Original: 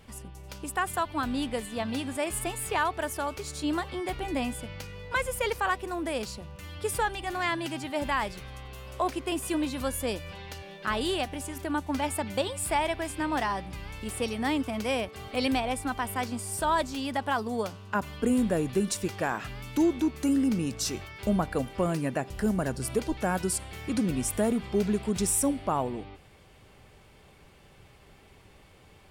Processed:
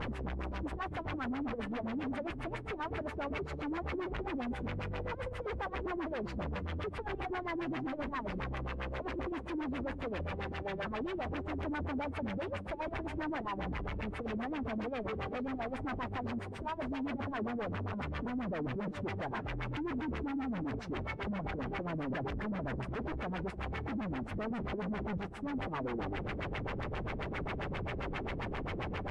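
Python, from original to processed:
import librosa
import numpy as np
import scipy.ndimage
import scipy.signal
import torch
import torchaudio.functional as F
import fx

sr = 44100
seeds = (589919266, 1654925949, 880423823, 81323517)

y = np.sign(x) * np.sqrt(np.mean(np.square(x)))
y = y + 10.0 ** (-12.0 / 20.0) * np.pad(y, (int(302 * sr / 1000.0), 0))[:len(y)]
y = fx.filter_lfo_lowpass(y, sr, shape='sine', hz=7.5, low_hz=250.0, high_hz=2400.0, q=1.6)
y = y * librosa.db_to_amplitude(-7.0)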